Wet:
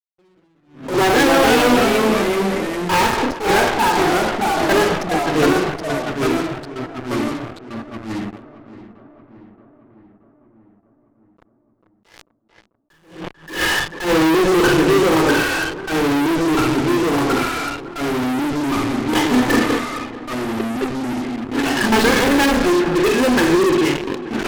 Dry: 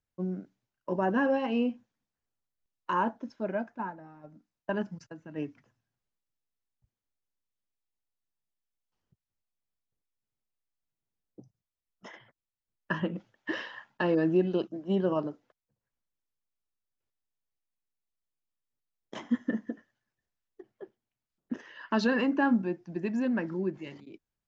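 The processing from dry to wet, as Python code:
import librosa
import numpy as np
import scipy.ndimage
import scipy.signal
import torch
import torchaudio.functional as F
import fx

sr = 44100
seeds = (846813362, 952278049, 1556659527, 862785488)

p1 = fx.tracing_dist(x, sr, depth_ms=0.071)
p2 = scipy.signal.sosfilt(scipy.signal.cheby1(2, 1.0, 3700.0, 'lowpass', fs=sr, output='sos'), p1)
p3 = fx.low_shelf(p2, sr, hz=75.0, db=6.0)
p4 = fx.hum_notches(p3, sr, base_hz=60, count=6)
p5 = p4 + 0.84 * np.pad(p4, (int(2.4 * sr / 1000.0), 0))[:len(p4)]
p6 = fx.rev_schroeder(p5, sr, rt60_s=0.58, comb_ms=25, drr_db=3.5)
p7 = fx.fuzz(p6, sr, gain_db=44.0, gate_db=-43.0)
p8 = p7 + fx.echo_filtered(p7, sr, ms=442, feedback_pct=63, hz=2900.0, wet_db=-15, dry=0)
p9 = fx.echo_pitch(p8, sr, ms=158, semitones=-2, count=3, db_per_echo=-3.0)
y = fx.attack_slew(p9, sr, db_per_s=130.0)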